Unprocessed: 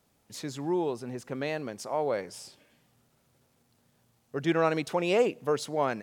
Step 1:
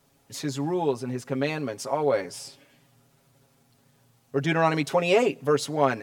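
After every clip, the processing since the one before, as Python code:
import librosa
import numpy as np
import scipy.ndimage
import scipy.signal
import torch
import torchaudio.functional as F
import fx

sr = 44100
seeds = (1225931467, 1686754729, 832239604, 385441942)

y = x + 0.76 * np.pad(x, (int(7.3 * sr / 1000.0), 0))[:len(x)]
y = y * librosa.db_to_amplitude(3.5)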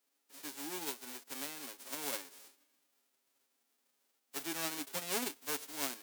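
y = fx.envelope_flatten(x, sr, power=0.1)
y = fx.ladder_highpass(y, sr, hz=250.0, resonance_pct=45)
y = y * librosa.db_to_amplitude(-7.5)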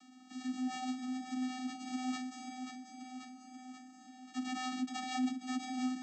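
y = fx.vocoder(x, sr, bands=16, carrier='square', carrier_hz=255.0)
y = fx.echo_feedback(y, sr, ms=536, feedback_pct=48, wet_db=-13.5)
y = fx.env_flatten(y, sr, amount_pct=50)
y = y * librosa.db_to_amplitude(1.0)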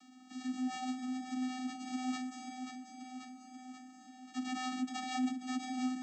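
y = x + 10.0 ** (-20.5 / 20.0) * np.pad(x, (int(145 * sr / 1000.0), 0))[:len(x)]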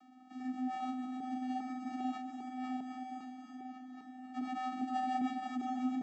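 y = fx.reverse_delay_fb(x, sr, ms=401, feedback_pct=47, wet_db=-3)
y = fx.bandpass_q(y, sr, hz=600.0, q=0.98)
y = y * librosa.db_to_amplitude(5.0)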